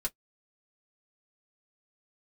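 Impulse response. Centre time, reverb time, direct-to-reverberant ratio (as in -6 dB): 5 ms, 0.10 s, -1.5 dB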